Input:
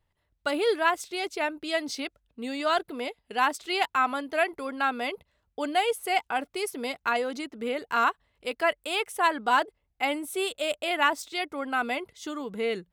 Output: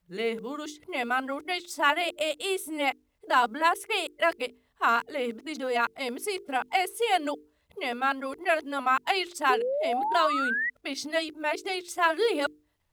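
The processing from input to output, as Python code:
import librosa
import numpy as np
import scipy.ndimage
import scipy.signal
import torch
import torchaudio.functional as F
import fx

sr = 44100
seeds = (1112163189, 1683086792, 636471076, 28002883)

y = np.flip(x).copy()
y = fx.hum_notches(y, sr, base_hz=50, count=9)
y = fx.quant_companded(y, sr, bits=8)
y = fx.spec_paint(y, sr, seeds[0], shape='rise', start_s=9.49, length_s=1.21, low_hz=400.0, high_hz=2000.0, level_db=-28.0)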